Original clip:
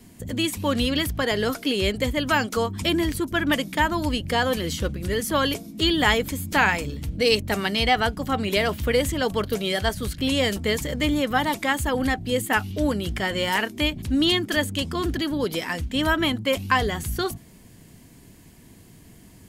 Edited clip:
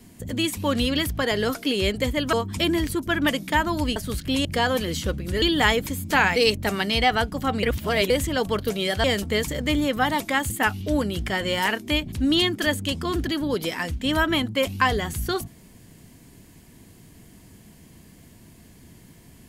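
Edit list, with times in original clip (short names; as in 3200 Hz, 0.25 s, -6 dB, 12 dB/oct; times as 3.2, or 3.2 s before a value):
2.33–2.58 cut
5.18–5.84 cut
6.78–7.21 cut
8.48–8.95 reverse
9.89–10.38 move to 4.21
11.84–12.4 cut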